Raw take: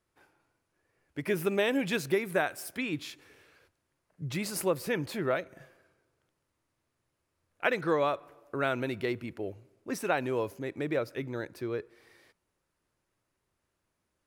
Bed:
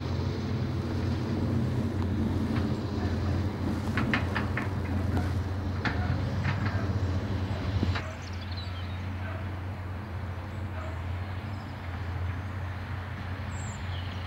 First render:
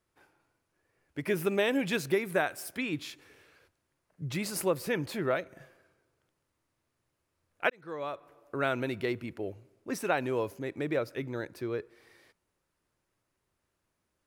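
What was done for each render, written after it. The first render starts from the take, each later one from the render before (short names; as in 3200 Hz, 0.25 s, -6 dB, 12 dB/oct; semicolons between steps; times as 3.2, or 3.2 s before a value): 7.7–8.63 fade in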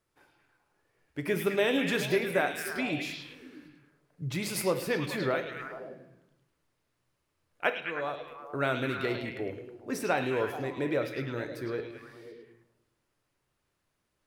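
delay with a stepping band-pass 0.106 s, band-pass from 3700 Hz, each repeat -0.7 oct, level -1 dB; shoebox room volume 150 m³, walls mixed, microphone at 0.35 m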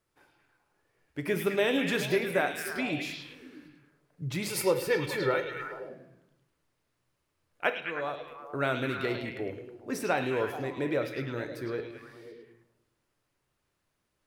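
4.5–5.89 comb 2.2 ms, depth 61%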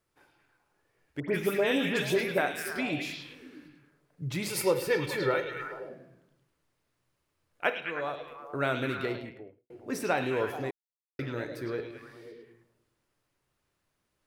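1.2–2.38 dispersion highs, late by 88 ms, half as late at 2200 Hz; 8.9–9.7 studio fade out; 10.71–11.19 mute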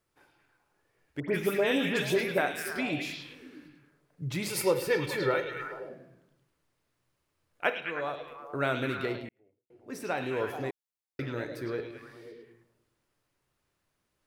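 9.29–10.65 fade in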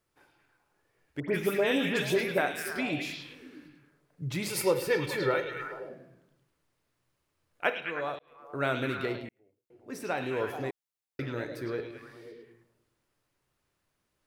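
8.19–8.66 fade in linear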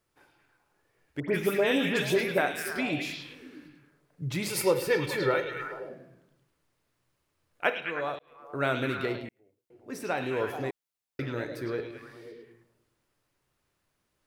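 gain +1.5 dB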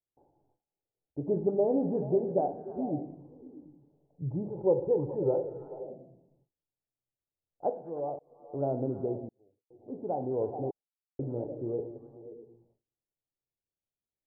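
gate with hold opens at -58 dBFS; Chebyshev low-pass 830 Hz, order 5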